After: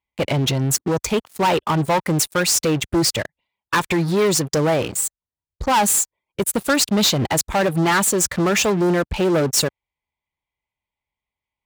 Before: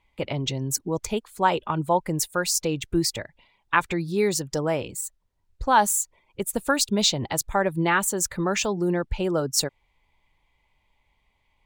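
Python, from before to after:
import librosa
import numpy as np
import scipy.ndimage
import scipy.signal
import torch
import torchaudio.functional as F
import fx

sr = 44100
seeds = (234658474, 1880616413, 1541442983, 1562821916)

y = fx.leveller(x, sr, passes=5)
y = scipy.signal.sosfilt(scipy.signal.butter(2, 58.0, 'highpass', fs=sr, output='sos'), y)
y = y * librosa.db_to_amplitude(-7.5)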